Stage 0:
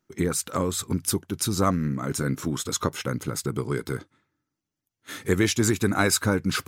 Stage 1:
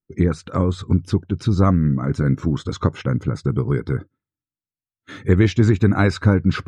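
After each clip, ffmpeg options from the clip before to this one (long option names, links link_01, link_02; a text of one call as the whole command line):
ffmpeg -i in.wav -filter_complex "[0:a]acrossover=split=5600[link_01][link_02];[link_02]acompressor=threshold=-45dB:ratio=4:attack=1:release=60[link_03];[link_01][link_03]amix=inputs=2:normalize=0,afftdn=noise_reduction=23:noise_floor=-48,aemphasis=mode=reproduction:type=bsi,volume=2dB" out.wav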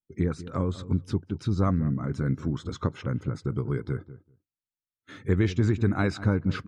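ffmpeg -i in.wav -filter_complex "[0:a]asplit=2[link_01][link_02];[link_02]adelay=194,lowpass=frequency=850:poles=1,volume=-14.5dB,asplit=2[link_03][link_04];[link_04]adelay=194,lowpass=frequency=850:poles=1,volume=0.15[link_05];[link_01][link_03][link_05]amix=inputs=3:normalize=0,volume=-8.5dB" out.wav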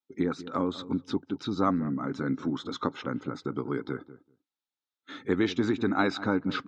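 ffmpeg -i in.wav -af "highpass=260,equalizer=frequency=270:width_type=q:width=4:gain=8,equalizer=frequency=840:width_type=q:width=4:gain=7,equalizer=frequency=1300:width_type=q:width=4:gain=5,equalizer=frequency=3700:width_type=q:width=4:gain=8,lowpass=frequency=6700:width=0.5412,lowpass=frequency=6700:width=1.3066" out.wav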